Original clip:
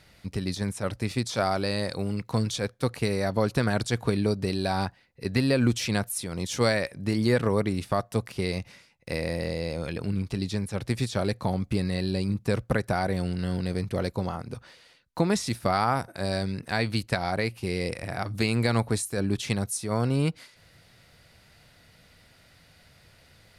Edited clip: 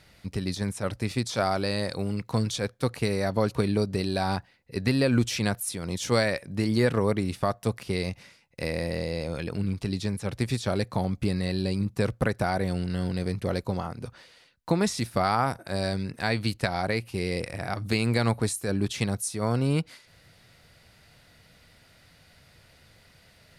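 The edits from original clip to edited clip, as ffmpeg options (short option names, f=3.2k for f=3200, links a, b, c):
-filter_complex "[0:a]asplit=2[a][b];[a]atrim=end=3.552[c];[b]atrim=start=4.038[d];[c][d]acrossfade=d=0.004:c1=hsin:c2=hsin"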